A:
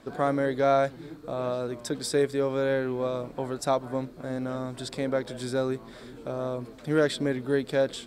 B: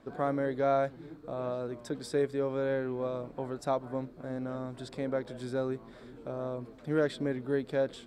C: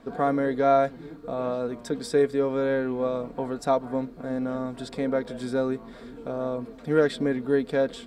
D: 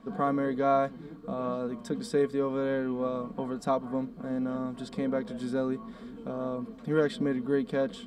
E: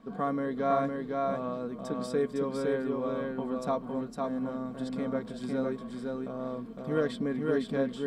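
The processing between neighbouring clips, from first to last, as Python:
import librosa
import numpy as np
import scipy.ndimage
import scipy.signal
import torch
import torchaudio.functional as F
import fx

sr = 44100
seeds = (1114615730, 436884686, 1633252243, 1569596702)

y1 = fx.high_shelf(x, sr, hz=2900.0, db=-9.5)
y1 = y1 * librosa.db_to_amplitude(-4.5)
y2 = y1 + 0.43 * np.pad(y1, (int(4.3 * sr / 1000.0), 0))[:len(y1)]
y2 = y2 * librosa.db_to_amplitude(6.0)
y3 = fx.small_body(y2, sr, hz=(200.0, 1100.0, 3100.0), ring_ms=85, db=14)
y3 = y3 * librosa.db_to_amplitude(-5.5)
y4 = y3 + 10.0 ** (-3.0 / 20.0) * np.pad(y3, (int(508 * sr / 1000.0), 0))[:len(y3)]
y4 = y4 * librosa.db_to_amplitude(-3.0)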